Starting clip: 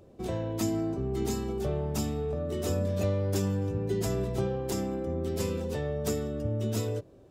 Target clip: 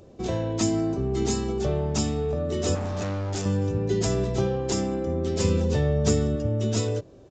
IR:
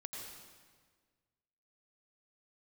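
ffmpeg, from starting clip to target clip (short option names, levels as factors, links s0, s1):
-filter_complex "[0:a]asettb=1/sr,asplit=3[s0][s1][s2];[s0]atrim=end=2.754[s3];[s1]atrim=start=2.75:end=3.46,asetpts=PTS-STARTPTS,afade=t=in:d=0.004:c=qsin,afade=t=out:st=0.706:d=0.004:c=qsin,asoftclip=type=hard:threshold=0.0251[s4];[s2]atrim=start=3.456[s5];[s3][s4]acrossfade=d=0.004:c1=hsin:c2=qsin[s6];[s6][s5]acrossfade=d=0.004:c1=qsin:c2=hsin,highshelf=f=5800:g=9,aresample=16000,aresample=44100,asettb=1/sr,asplit=3[s7][s8][s9];[s7]atrim=end=5.444[s10];[s8]atrim=start=5.44:end=6.36,asetpts=PTS-STARTPTS,afade=t=in:d=0.004:c=qsin,afade=t=out:st=0.916:d=0.004:c=qsin,equalizer=f=99:w=0.53:g=7.5[s11];[s9]atrim=start=6.356[s12];[s10][s11]acrossfade=d=0.004:c1=hsin:c2=qsin[s13];[s13][s12]acrossfade=d=0.004:c1=qsin:c2=hsin,volume=1.78"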